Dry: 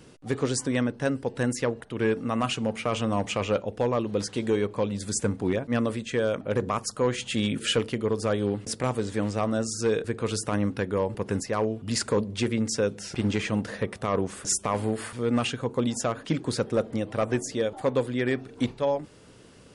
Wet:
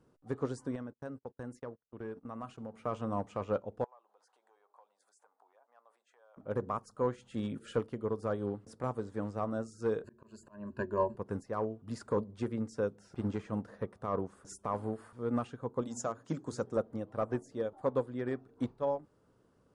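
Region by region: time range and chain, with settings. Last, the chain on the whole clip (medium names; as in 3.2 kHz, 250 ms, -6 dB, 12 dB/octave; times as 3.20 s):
0.75–2.74 s: gate -34 dBFS, range -34 dB + compression 3:1, threshold -28 dBFS
3.84–6.37 s: compression, threshold -30 dBFS + ladder high-pass 690 Hz, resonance 55% + treble shelf 9 kHz +5.5 dB
10.03–11.17 s: rippled EQ curve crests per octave 1.4, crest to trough 17 dB + slow attack 310 ms
15.81–16.77 s: high-pass 52 Hz + peaking EQ 6.8 kHz +13.5 dB 0.75 oct + hum notches 60/120/180/240/300/360/420 Hz
whole clip: resonant high shelf 1.7 kHz -9.5 dB, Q 1.5; upward expansion 1.5:1, over -39 dBFS; trim -6.5 dB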